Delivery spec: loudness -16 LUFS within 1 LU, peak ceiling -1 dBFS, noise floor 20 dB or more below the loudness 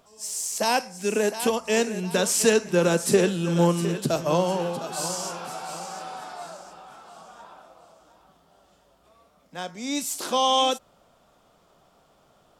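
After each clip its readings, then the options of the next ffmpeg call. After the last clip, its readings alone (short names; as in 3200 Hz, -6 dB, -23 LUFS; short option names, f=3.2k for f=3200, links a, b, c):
loudness -24.5 LUFS; peak -7.0 dBFS; loudness target -16.0 LUFS
-> -af "volume=8.5dB,alimiter=limit=-1dB:level=0:latency=1"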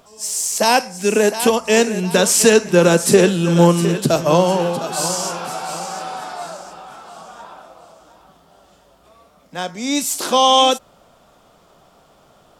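loudness -16.0 LUFS; peak -1.0 dBFS; noise floor -53 dBFS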